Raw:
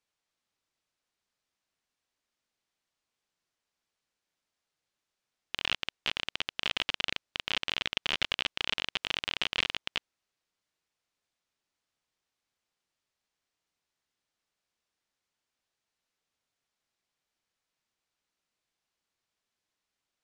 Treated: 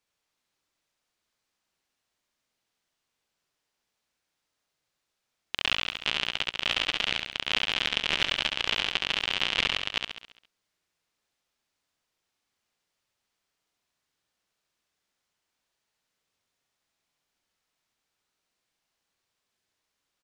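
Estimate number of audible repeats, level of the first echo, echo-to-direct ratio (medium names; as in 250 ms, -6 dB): 6, -4.5 dB, -3.0 dB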